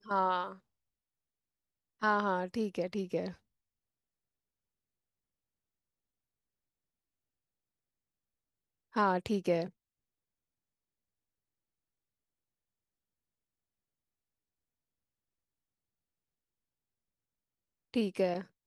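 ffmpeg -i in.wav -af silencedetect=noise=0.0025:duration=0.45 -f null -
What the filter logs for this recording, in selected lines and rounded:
silence_start: 0.58
silence_end: 2.01 | silence_duration: 1.43
silence_start: 3.35
silence_end: 8.94 | silence_duration: 5.58
silence_start: 9.70
silence_end: 17.94 | silence_duration: 8.24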